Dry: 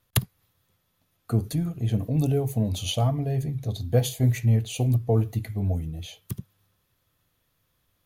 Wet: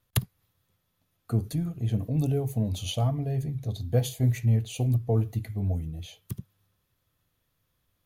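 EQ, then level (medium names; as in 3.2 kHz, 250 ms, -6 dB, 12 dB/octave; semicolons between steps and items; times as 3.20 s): bass shelf 230 Hz +3 dB; -4.5 dB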